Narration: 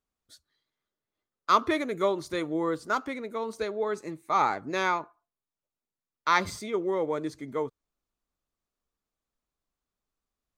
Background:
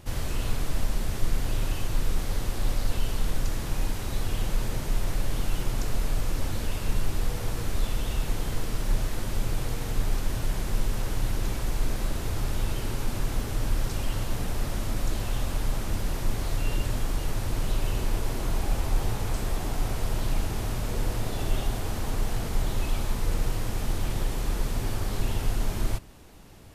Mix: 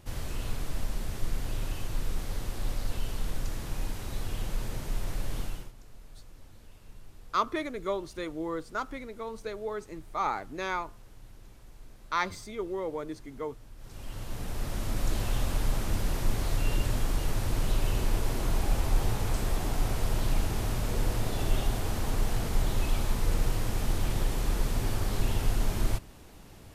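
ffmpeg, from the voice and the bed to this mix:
ffmpeg -i stem1.wav -i stem2.wav -filter_complex "[0:a]adelay=5850,volume=-5.5dB[link_01];[1:a]volume=17.5dB,afade=type=out:start_time=5.4:duration=0.32:silence=0.125893,afade=type=in:start_time=13.77:duration=1.41:silence=0.0707946[link_02];[link_01][link_02]amix=inputs=2:normalize=0" out.wav

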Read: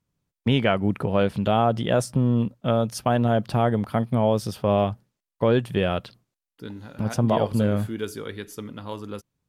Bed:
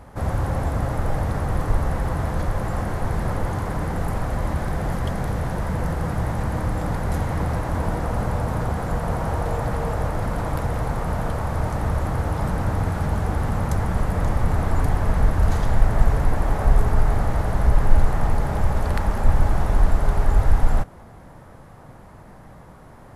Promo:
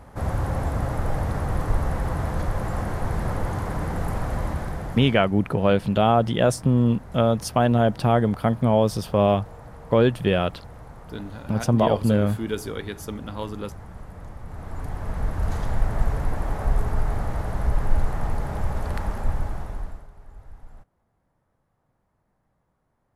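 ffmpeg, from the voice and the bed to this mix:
ffmpeg -i stem1.wav -i stem2.wav -filter_complex "[0:a]adelay=4500,volume=2dB[link_01];[1:a]volume=10.5dB,afade=type=out:start_time=4.38:duration=0.9:silence=0.158489,afade=type=in:start_time=14.45:duration=1.17:silence=0.237137,afade=type=out:start_time=19.07:duration=1.01:silence=0.0794328[link_02];[link_01][link_02]amix=inputs=2:normalize=0" out.wav

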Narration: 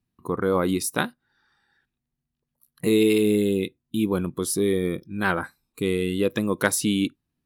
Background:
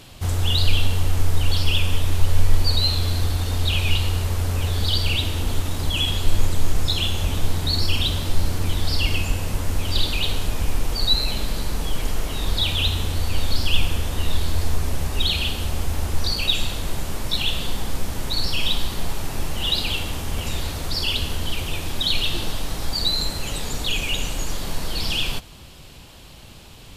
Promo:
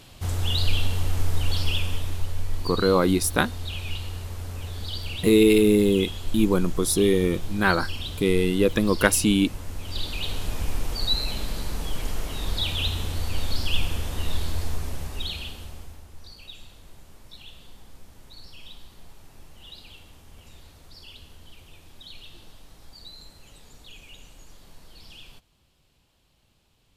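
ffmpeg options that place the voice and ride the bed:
ffmpeg -i stem1.wav -i stem2.wav -filter_complex "[0:a]adelay=2400,volume=2.5dB[link_01];[1:a]volume=2dB,afade=type=out:start_time=1.63:duration=0.72:silence=0.446684,afade=type=in:start_time=9.79:duration=0.74:silence=0.473151,afade=type=out:start_time=14.41:duration=1.63:silence=0.133352[link_02];[link_01][link_02]amix=inputs=2:normalize=0" out.wav

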